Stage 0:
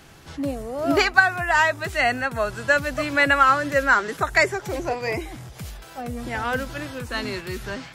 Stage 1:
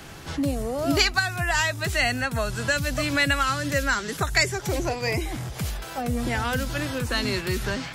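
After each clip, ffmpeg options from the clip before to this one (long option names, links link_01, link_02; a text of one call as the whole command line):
ffmpeg -i in.wav -filter_complex "[0:a]acrossover=split=200|3000[link_01][link_02][link_03];[link_02]acompressor=threshold=-34dB:ratio=4[link_04];[link_01][link_04][link_03]amix=inputs=3:normalize=0,volume=6.5dB" out.wav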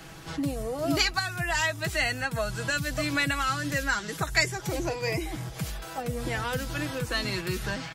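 ffmpeg -i in.wav -af "aecho=1:1:6.2:0.51,volume=-4.5dB" out.wav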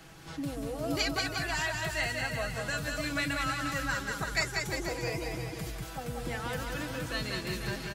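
ffmpeg -i in.wav -af "aecho=1:1:190|351.5|488.8|605.5|704.6:0.631|0.398|0.251|0.158|0.1,volume=-6.5dB" out.wav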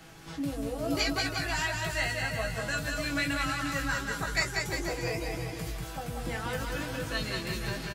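ffmpeg -i in.wav -filter_complex "[0:a]asplit=2[link_01][link_02];[link_02]adelay=18,volume=-5dB[link_03];[link_01][link_03]amix=inputs=2:normalize=0" out.wav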